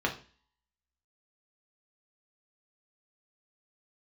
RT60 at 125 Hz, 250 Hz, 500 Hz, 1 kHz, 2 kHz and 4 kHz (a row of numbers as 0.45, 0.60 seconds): 0.45, 0.45, 0.40, 0.40, 0.45, 0.45 seconds